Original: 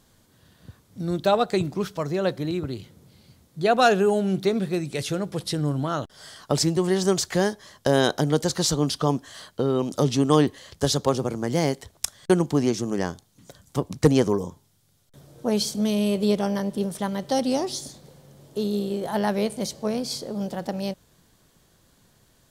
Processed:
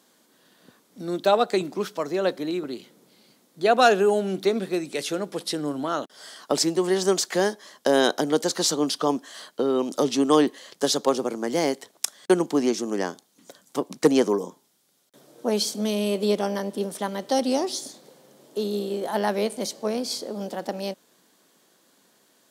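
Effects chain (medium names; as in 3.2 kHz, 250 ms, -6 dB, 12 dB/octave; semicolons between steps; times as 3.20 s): high-pass 230 Hz 24 dB/octave; trim +1 dB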